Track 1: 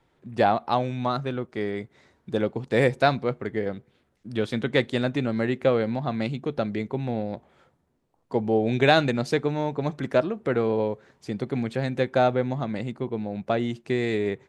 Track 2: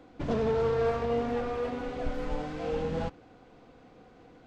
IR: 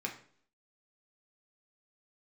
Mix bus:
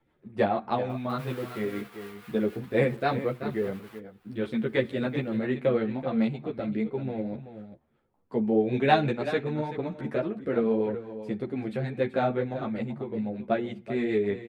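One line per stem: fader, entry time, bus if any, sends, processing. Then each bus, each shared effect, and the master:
+0.5 dB, 0.00 s, send -13.5 dB, echo send -10.5 dB, rotary speaker horn 6.7 Hz
-2.0 dB, 0.90 s, no send, no echo send, half-waves squared off; HPF 1200 Hz 12 dB/oct; upward compressor, threshold -35 dBFS; auto duck -10 dB, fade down 1.75 s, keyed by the first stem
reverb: on, RT60 0.55 s, pre-delay 3 ms
echo: echo 0.382 s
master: bell 6300 Hz -11.5 dB 1.3 oct; ensemble effect

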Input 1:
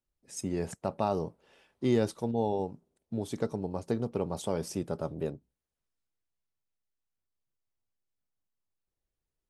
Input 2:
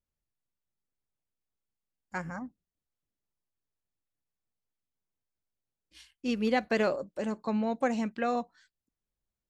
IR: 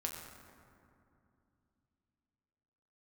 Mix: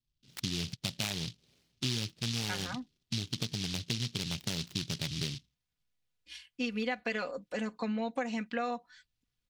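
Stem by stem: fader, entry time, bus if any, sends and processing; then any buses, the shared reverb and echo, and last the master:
+0.5 dB, 0.00 s, no send, Wiener smoothing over 41 samples; graphic EQ 125/500/4000 Hz +9/-11/-10 dB; noise-modulated delay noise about 4200 Hz, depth 0.26 ms
-4.0 dB, 0.35 s, no send, comb 4.1 ms, depth 68%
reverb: off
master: bell 2800 Hz +10.5 dB 2.5 oct; compressor 5:1, threshold -31 dBFS, peak gain reduction 12.5 dB

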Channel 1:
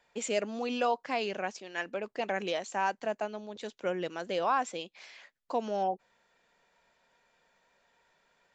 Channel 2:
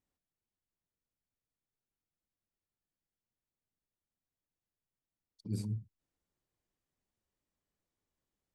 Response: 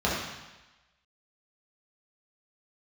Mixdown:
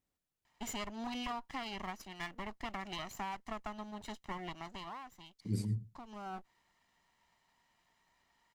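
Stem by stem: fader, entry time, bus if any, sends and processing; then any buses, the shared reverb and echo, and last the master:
-3.0 dB, 0.45 s, no send, no echo send, minimum comb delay 1 ms; compressor 6:1, threshold -34 dBFS, peak gain reduction 10 dB; auto duck -13 dB, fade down 0.95 s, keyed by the second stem
+1.5 dB, 0.00 s, no send, echo send -20.5 dB, dry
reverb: off
echo: echo 0.106 s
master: dry

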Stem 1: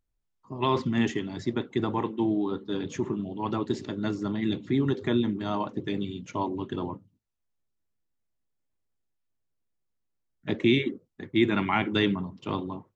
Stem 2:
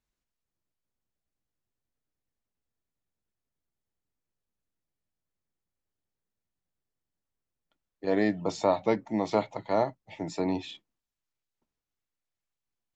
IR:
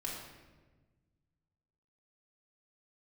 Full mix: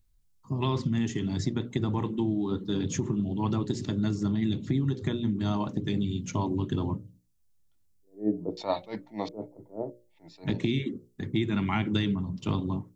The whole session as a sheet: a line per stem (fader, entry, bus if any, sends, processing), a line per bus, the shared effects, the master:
-0.5 dB, 0.00 s, no send, tone controls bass +14 dB, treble +12 dB; compressor 6:1, threshold -23 dBFS, peak gain reduction 12 dB
-2.0 dB, 0.00 s, no send, LFO low-pass square 0.7 Hz 400–4200 Hz; attack slew limiter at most 240 dB/s; auto duck -13 dB, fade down 0.75 s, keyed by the first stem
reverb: off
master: notches 60/120/180/240/300/360/420/480/540/600 Hz

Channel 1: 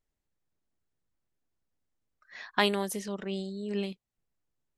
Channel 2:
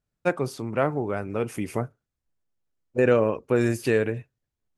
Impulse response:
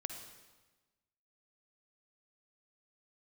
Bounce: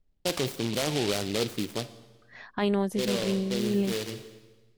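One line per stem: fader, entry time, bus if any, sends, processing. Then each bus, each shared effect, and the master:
+0.5 dB, 0.00 s, no send, tilt -3 dB/oct
+2.0 dB, 0.00 s, send -13 dB, low-pass opened by the level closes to 600 Hz, open at -21 dBFS; low shelf 84 Hz -10.5 dB; noise-modulated delay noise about 3300 Hz, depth 0.17 ms; auto duck -23 dB, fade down 0.75 s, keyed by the first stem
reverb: on, RT60 1.2 s, pre-delay 46 ms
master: limiter -17 dBFS, peak gain reduction 11 dB

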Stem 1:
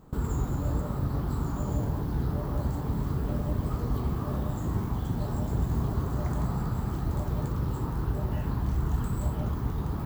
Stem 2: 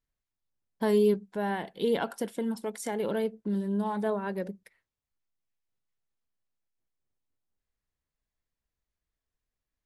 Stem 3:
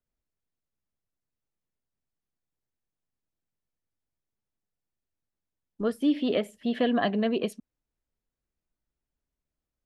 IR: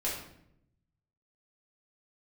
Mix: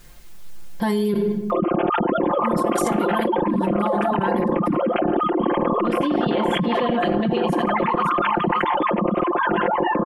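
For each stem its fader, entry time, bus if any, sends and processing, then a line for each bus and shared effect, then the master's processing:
+1.5 dB, 1.50 s, no send, echo send -17 dB, sine-wave speech; compressor, threshold -28 dBFS, peak gain reduction 10 dB; cascading phaser rising 0.93 Hz
-4.5 dB, 0.00 s, muted 1.14–2.43, send -16.5 dB, no echo send, compressor, threshold -33 dBFS, peak gain reduction 13 dB
-11.5 dB, 0.00 s, send -9.5 dB, echo send -10 dB, dry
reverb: on, RT60 0.75 s, pre-delay 4 ms
echo: feedback echo 0.559 s, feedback 22%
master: comb 5.7 ms, depth 95%; fast leveller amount 100%

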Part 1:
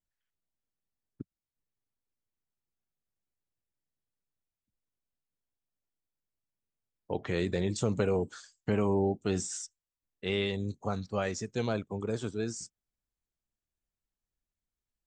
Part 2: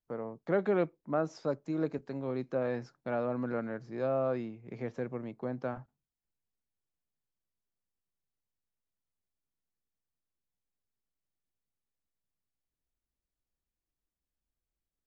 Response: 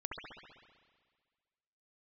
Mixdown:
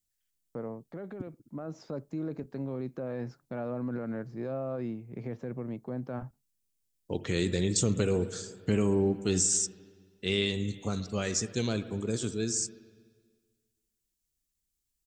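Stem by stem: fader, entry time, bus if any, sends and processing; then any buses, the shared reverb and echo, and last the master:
+1.0 dB, 0.00 s, send -10 dB, EQ curve 340 Hz 0 dB, 800 Hz -10 dB, 7700 Hz +10 dB
-2.0 dB, 0.45 s, no send, gate with hold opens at -58 dBFS; low shelf 370 Hz +9 dB; limiter -25 dBFS, peak gain reduction 11 dB; auto duck -8 dB, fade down 0.60 s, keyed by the first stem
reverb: on, RT60 1.7 s, pre-delay 63 ms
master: dry

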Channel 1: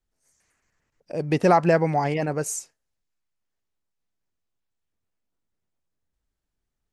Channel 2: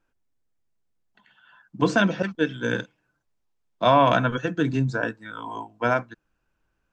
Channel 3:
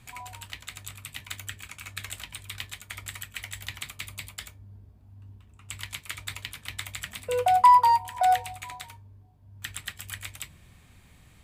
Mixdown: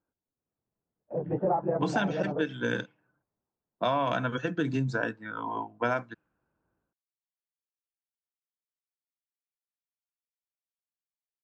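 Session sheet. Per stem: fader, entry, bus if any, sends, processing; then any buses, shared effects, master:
+2.5 dB, 0.00 s, no send, phase scrambler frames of 50 ms; gate with hold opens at -34 dBFS; ladder low-pass 1100 Hz, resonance 35%
-6.5 dB, 0.00 s, no send, HPF 95 Hz; low-pass opened by the level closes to 1000 Hz, open at -19 dBFS; AGC gain up to 9 dB
off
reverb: off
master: compressor 3:1, threshold -26 dBFS, peak gain reduction 9.5 dB

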